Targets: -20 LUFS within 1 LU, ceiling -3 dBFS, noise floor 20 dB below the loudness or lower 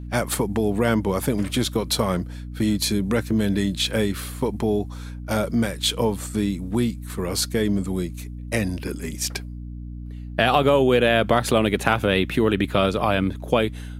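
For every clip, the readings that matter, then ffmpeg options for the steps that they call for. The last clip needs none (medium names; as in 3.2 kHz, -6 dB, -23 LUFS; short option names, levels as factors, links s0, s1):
hum 60 Hz; highest harmonic 300 Hz; hum level -32 dBFS; loudness -22.5 LUFS; peak level -1.5 dBFS; loudness target -20.0 LUFS
-> -af "bandreject=f=60:t=h:w=6,bandreject=f=120:t=h:w=6,bandreject=f=180:t=h:w=6,bandreject=f=240:t=h:w=6,bandreject=f=300:t=h:w=6"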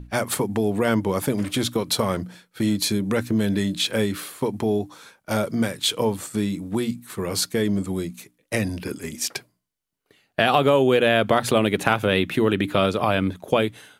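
hum not found; loudness -23.0 LUFS; peak level -1.5 dBFS; loudness target -20.0 LUFS
-> -af "volume=1.41,alimiter=limit=0.708:level=0:latency=1"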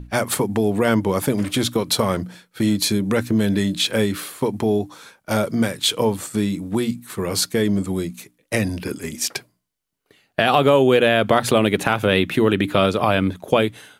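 loudness -20.0 LUFS; peak level -3.0 dBFS; noise floor -69 dBFS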